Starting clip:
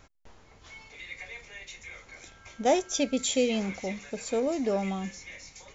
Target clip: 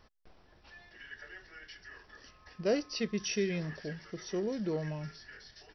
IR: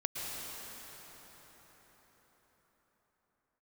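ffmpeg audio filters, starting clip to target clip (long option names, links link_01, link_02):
-af "asetrate=35002,aresample=44100,atempo=1.25992,volume=-6dB"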